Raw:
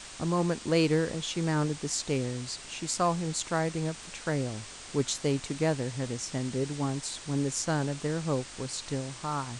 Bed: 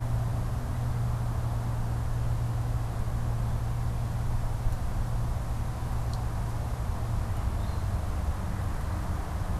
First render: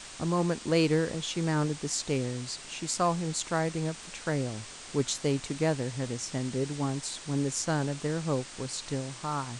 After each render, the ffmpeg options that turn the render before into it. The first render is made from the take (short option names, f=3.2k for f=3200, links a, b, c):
-af "bandreject=f=50:t=h:w=4,bandreject=f=100:t=h:w=4"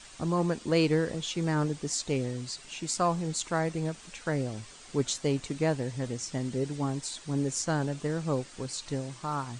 -af "afftdn=nr=8:nf=-45"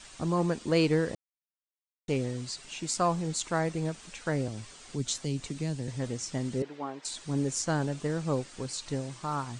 -filter_complex "[0:a]asettb=1/sr,asplit=3[a][b][c];[a]atrim=end=4.484[d];[b]atrim=start=4.48:end=5.88,asetpts=PTS-STARTPTS,afade=t=in:d=0.004:c=qsin,afade=t=out:st=1.396:d=0.004:c=qsin,acrossover=split=270|3000[e][f][g];[f]acompressor=threshold=-41dB:ratio=6:attack=3.2:release=140:knee=2.83:detection=peak[h];[e][h][g]amix=inputs=3:normalize=0[i];[c]atrim=start=5.876[j];[d][i]acrossfade=d=0.004:c1=hsin:c2=qsin[k];[k][j]acrossfade=d=0.004:c1=qsin:c2=hsin,asettb=1/sr,asplit=3[l][m][n];[l]atrim=end=6.624[o];[m]atrim=start=6.62:end=7.05,asetpts=PTS-STARTPTS,afade=t=in:d=0.004:c=qsin,afade=t=out:st=0.426:d=0.004:c=qsin,highpass=430,lowpass=2.7k[p];[n]atrim=start=7.046[q];[o][p]acrossfade=d=0.004:c1=hsin:c2=qsin[r];[r][q]acrossfade=d=0.004:c1=qsin:c2=hsin,asplit=3[s][t][u];[s]atrim=end=1.15,asetpts=PTS-STARTPTS,afade=t=out:st=1.146:d=0.004:c=hsin[v];[t]atrim=start=1.15:end=2.08,asetpts=PTS-STARTPTS,volume=0[w];[u]atrim=start=2.08,asetpts=PTS-STARTPTS,afade=t=in:d=0.004:c=hsin[x];[v][w][x]concat=n=3:v=0:a=1"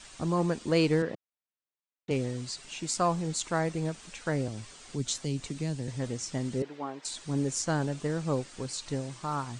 -filter_complex "[0:a]asettb=1/sr,asplit=3[a][b][c];[a]atrim=end=1.024[d];[b]atrim=start=1.02:end=2.11,asetpts=PTS-STARTPTS,afade=t=in:d=0.004:c=qsin,afade=t=out:st=1.086:d=0.004:c=qsin,highpass=140,lowpass=3.2k[e];[c]atrim=start=2.106[f];[d][e]acrossfade=d=0.004:c1=hsin:c2=qsin[g];[g][f]acrossfade=d=0.004:c1=qsin:c2=hsin"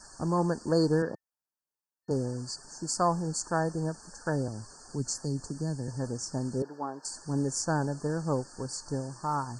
-af "afftfilt=real='re*(1-between(b*sr/4096,1800,4300))':imag='im*(1-between(b*sr/4096,1800,4300))':win_size=4096:overlap=0.75,equalizer=f=890:t=o:w=0.21:g=6"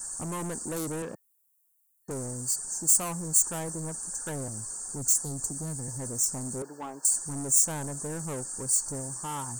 -af "asoftclip=type=tanh:threshold=-31.5dB,aexciter=amount=10.9:drive=6.7:freq=7.2k"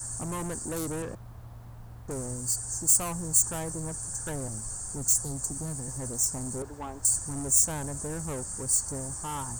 -filter_complex "[1:a]volume=-15.5dB[a];[0:a][a]amix=inputs=2:normalize=0"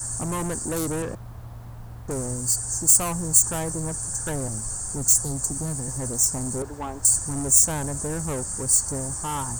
-af "volume=6dB,alimiter=limit=-3dB:level=0:latency=1"